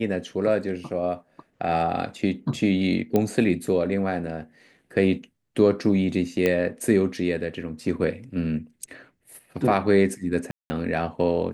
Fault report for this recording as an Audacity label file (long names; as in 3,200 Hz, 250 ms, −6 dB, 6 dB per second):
3.160000	3.160000	click −10 dBFS
6.460000	6.460000	click −10 dBFS
10.510000	10.700000	drop-out 190 ms